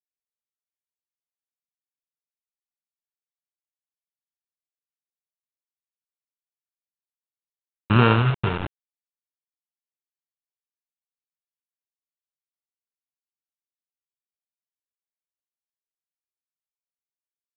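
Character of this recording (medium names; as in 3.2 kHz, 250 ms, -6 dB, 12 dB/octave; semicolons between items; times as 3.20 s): a buzz of ramps at a fixed pitch in blocks of 32 samples; tremolo saw down 0.83 Hz, depth 70%; a quantiser's noise floor 6-bit, dither none; µ-law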